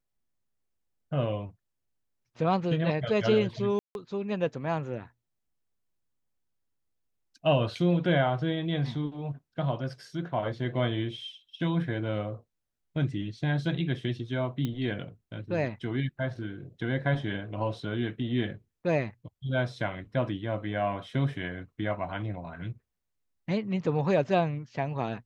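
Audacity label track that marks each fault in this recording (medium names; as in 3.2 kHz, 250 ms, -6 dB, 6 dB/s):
3.790000	3.950000	dropout 161 ms
14.650000	14.650000	pop -19 dBFS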